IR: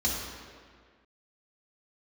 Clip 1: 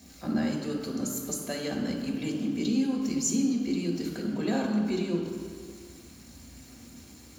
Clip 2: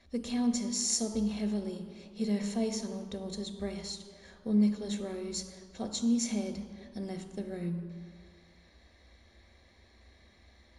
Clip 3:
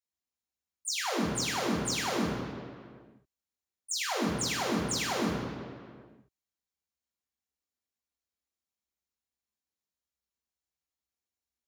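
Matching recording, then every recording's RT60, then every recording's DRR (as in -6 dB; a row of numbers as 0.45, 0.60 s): 3; 1.8, 1.8, 1.8 s; -0.5, 6.5, -5.5 dB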